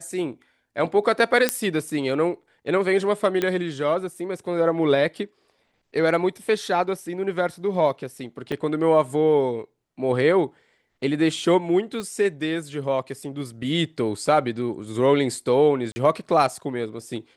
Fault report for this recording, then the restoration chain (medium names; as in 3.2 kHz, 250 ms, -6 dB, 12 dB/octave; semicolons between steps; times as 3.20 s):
1.49 s: pop -3 dBFS
3.42 s: pop -10 dBFS
8.52 s: dropout 3.2 ms
12.00 s: pop -18 dBFS
15.92–15.96 s: dropout 40 ms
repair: de-click; interpolate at 8.52 s, 3.2 ms; interpolate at 15.92 s, 40 ms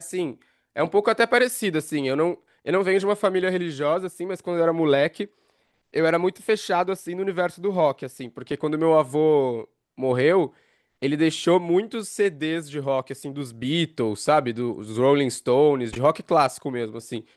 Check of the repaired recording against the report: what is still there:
12.00 s: pop